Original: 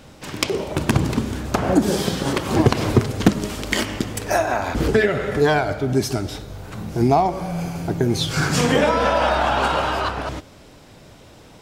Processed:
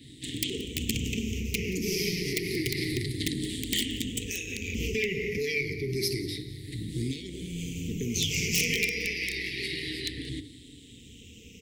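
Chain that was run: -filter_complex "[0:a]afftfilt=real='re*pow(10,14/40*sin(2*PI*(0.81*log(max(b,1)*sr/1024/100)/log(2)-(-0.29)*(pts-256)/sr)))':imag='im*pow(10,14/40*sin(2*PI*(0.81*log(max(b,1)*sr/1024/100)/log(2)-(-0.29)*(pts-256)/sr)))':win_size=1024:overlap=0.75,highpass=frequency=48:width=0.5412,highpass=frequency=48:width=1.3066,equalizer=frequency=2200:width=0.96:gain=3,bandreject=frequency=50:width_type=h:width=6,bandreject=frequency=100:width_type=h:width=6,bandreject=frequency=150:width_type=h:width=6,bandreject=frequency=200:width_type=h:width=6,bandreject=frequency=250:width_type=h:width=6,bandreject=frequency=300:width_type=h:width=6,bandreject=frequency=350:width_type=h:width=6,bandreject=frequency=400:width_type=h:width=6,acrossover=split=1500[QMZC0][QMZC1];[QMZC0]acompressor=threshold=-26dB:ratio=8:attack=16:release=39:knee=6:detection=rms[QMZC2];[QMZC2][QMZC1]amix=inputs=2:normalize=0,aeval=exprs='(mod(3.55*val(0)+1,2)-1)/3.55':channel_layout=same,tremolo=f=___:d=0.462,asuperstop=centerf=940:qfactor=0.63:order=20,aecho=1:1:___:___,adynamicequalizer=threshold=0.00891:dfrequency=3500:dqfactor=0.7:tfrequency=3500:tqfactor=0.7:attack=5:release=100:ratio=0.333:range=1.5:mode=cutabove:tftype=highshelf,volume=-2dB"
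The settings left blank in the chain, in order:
180, 178, 0.1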